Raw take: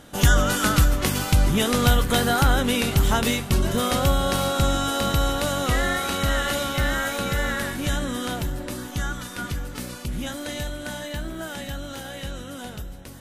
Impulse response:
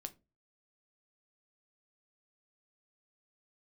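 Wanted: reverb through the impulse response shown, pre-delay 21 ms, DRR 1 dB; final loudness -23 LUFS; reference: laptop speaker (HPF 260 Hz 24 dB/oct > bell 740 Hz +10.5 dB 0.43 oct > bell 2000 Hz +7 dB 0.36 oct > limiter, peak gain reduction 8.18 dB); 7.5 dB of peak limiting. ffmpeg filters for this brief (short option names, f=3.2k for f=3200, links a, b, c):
-filter_complex "[0:a]alimiter=limit=-13.5dB:level=0:latency=1,asplit=2[a][b];[1:a]atrim=start_sample=2205,adelay=21[c];[b][c]afir=irnorm=-1:irlink=0,volume=3dB[d];[a][d]amix=inputs=2:normalize=0,highpass=f=260:w=0.5412,highpass=f=260:w=1.3066,equalizer=f=740:t=o:w=0.43:g=10.5,equalizer=f=2k:t=o:w=0.36:g=7,volume=1dB,alimiter=limit=-12.5dB:level=0:latency=1"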